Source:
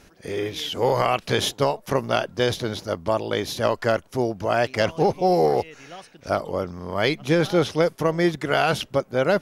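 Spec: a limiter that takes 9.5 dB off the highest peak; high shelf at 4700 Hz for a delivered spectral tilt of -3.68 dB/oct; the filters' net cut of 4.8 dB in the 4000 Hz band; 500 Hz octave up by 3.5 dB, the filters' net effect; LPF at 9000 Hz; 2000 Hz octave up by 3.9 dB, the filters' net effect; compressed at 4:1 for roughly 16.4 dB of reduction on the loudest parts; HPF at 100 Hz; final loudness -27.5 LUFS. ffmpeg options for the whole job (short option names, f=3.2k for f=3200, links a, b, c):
-af "highpass=100,lowpass=9k,equalizer=f=500:t=o:g=4,equalizer=f=2k:t=o:g=7.5,equalizer=f=4k:t=o:g=-7,highshelf=f=4.7k:g=-6,acompressor=threshold=-33dB:ratio=4,volume=11.5dB,alimiter=limit=-15.5dB:level=0:latency=1"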